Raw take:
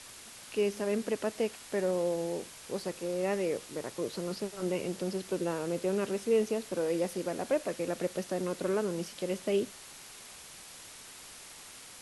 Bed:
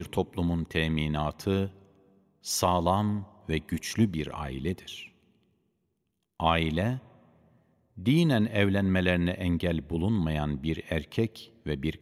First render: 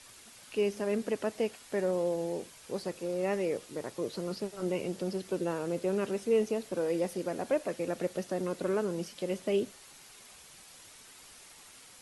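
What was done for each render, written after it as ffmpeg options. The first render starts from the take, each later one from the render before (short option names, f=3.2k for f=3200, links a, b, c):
-af "afftdn=nr=6:nf=-50"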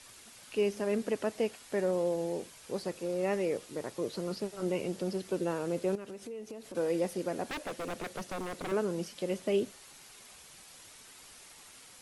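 -filter_complex "[0:a]asettb=1/sr,asplit=3[a][b][c];[a]atrim=end=5.954[d];[b]atrim=start=5.95:end=6.75,asetpts=PTS-STARTPTS,afade=t=in:d=0.004:c=qsin,afade=t=out:st=0.796:d=0.004:c=qsin,acompressor=threshold=-41dB:ratio=5:attack=3.2:release=140:knee=1:detection=peak[e];[c]atrim=start=6.746[f];[d][e]acrossfade=d=0.004:c1=hsin:c2=qsin[g];[g][f]acrossfade=d=0.004:c1=qsin:c2=hsin,asettb=1/sr,asplit=3[h][i][j];[h]atrim=end=7.444[k];[i]atrim=start=7.44:end=8.72,asetpts=PTS-STARTPTS,afade=t=in:d=0.004:c=qsin,afade=t=out:st=1.276:d=0.004:c=qsin,aeval=exprs='0.0266*(abs(mod(val(0)/0.0266+3,4)-2)-1)':c=same[l];[j]atrim=start=8.716[m];[k][l]acrossfade=d=0.004:c1=hsin:c2=qsin[n];[n][m]acrossfade=d=0.004:c1=qsin:c2=hsin"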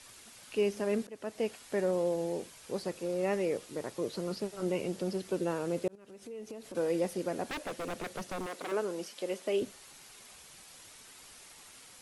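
-filter_complex "[0:a]asettb=1/sr,asplit=3[a][b][c];[a]atrim=end=8.464[d];[b]atrim=start=8.46:end=9.62,asetpts=PTS-STARTPTS,afade=t=in:d=0.004:c=qsin,afade=t=out:st=1.156:d=0.004:c=qsin,highpass=330[e];[c]atrim=start=9.616[f];[d][e]acrossfade=d=0.004:c1=hsin:c2=qsin[g];[g][f]acrossfade=d=0.004:c1=qsin:c2=hsin,asplit=3[h][i][j];[h]atrim=end=1.07,asetpts=PTS-STARTPTS,afade=t=out:st=1.066:d=0.004:c=hsin:silence=0.0707946[k];[i]atrim=start=1.07:end=5.88,asetpts=PTS-STARTPTS,afade=t=in:d=0.44:silence=0.0707946,afade=t=out:st=4.806:d=0.004:c=hsin[l];[j]atrim=start=5.88,asetpts=PTS-STARTPTS,afade=t=in:d=0.55[m];[k][l][m]concat=n=3:v=0:a=1"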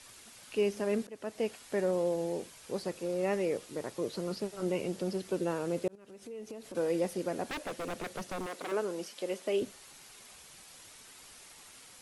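-af anull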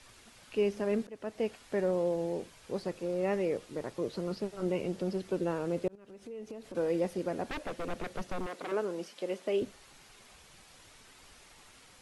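-af "lowpass=f=3.7k:p=1,lowshelf=f=69:g=10.5"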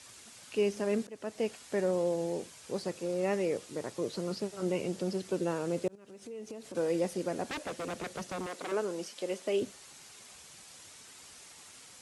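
-af "highpass=87,equalizer=f=7.7k:t=o:w=1.5:g=9.5"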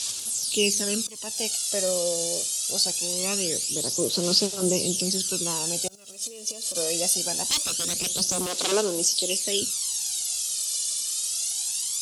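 -af "aphaser=in_gain=1:out_gain=1:delay=1.7:decay=0.61:speed=0.23:type=sinusoidal,aexciter=amount=9:drive=7.1:freq=3k"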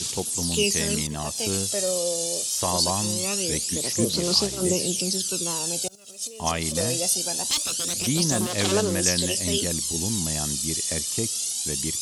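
-filter_complex "[1:a]volume=-2.5dB[a];[0:a][a]amix=inputs=2:normalize=0"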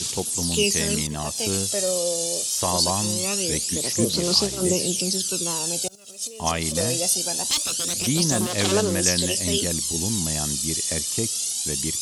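-af "volume=1.5dB"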